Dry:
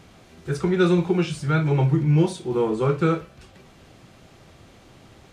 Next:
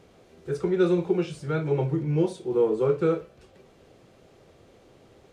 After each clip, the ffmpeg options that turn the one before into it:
ffmpeg -i in.wav -af "equalizer=frequency=460:width_type=o:width=0.96:gain=11,volume=-9dB" out.wav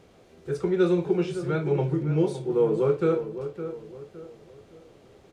ffmpeg -i in.wav -filter_complex "[0:a]asplit=2[link_01][link_02];[link_02]adelay=562,lowpass=frequency=1700:poles=1,volume=-10.5dB,asplit=2[link_03][link_04];[link_04]adelay=562,lowpass=frequency=1700:poles=1,volume=0.37,asplit=2[link_05][link_06];[link_06]adelay=562,lowpass=frequency=1700:poles=1,volume=0.37,asplit=2[link_07][link_08];[link_08]adelay=562,lowpass=frequency=1700:poles=1,volume=0.37[link_09];[link_01][link_03][link_05][link_07][link_09]amix=inputs=5:normalize=0" out.wav

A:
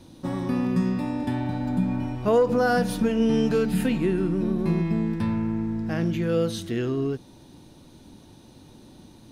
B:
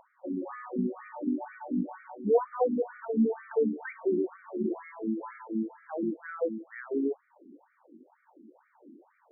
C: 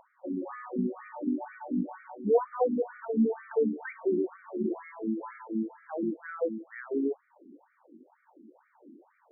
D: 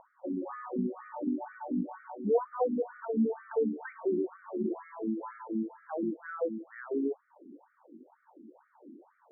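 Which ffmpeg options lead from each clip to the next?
ffmpeg -i in.wav -af "acompressor=mode=upward:threshold=-45dB:ratio=2.5,afftfilt=real='re*between(b*sr/1024,270*pow(1700/270,0.5+0.5*sin(2*PI*2.1*pts/sr))/1.41,270*pow(1700/270,0.5+0.5*sin(2*PI*2.1*pts/sr))*1.41)':imag='im*between(b*sr/1024,270*pow(1700/270,0.5+0.5*sin(2*PI*2.1*pts/sr))/1.41,270*pow(1700/270,0.5+0.5*sin(2*PI*2.1*pts/sr))*1.41)':win_size=1024:overlap=0.75" out.wav
ffmpeg -i in.wav -af anull out.wav
ffmpeg -i in.wav -filter_complex "[0:a]lowpass=frequency=1600:width=0.5412,lowpass=frequency=1600:width=1.3066,asplit=2[link_01][link_02];[link_02]acompressor=threshold=-36dB:ratio=6,volume=0dB[link_03];[link_01][link_03]amix=inputs=2:normalize=0,volume=-4.5dB" out.wav

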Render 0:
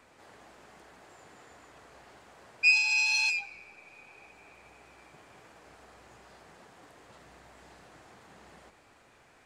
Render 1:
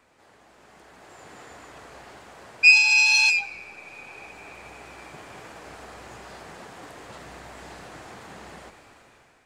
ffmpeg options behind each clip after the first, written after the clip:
ffmpeg -i in.wav -af "dynaudnorm=framelen=460:gausssize=5:maxgain=14dB,volume=-2dB" out.wav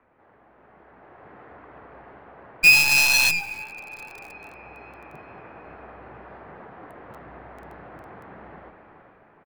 ffmpeg -i in.wav -filter_complex "[0:a]acrossover=split=110|2100[link_01][link_02][link_03];[link_02]aecho=1:1:418|836|1254|1672|2090|2508|2926:0.299|0.17|0.097|0.0553|0.0315|0.018|0.0102[link_04];[link_03]acrusher=bits=4:dc=4:mix=0:aa=0.000001[link_05];[link_01][link_04][link_05]amix=inputs=3:normalize=0" out.wav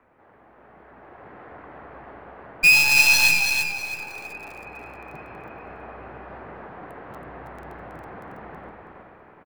ffmpeg -i in.wav -filter_complex "[0:a]asoftclip=type=tanh:threshold=-11dB,asplit=2[link_01][link_02];[link_02]aecho=0:1:324|648|972:0.501|0.125|0.0313[link_03];[link_01][link_03]amix=inputs=2:normalize=0,volume=2.5dB" out.wav

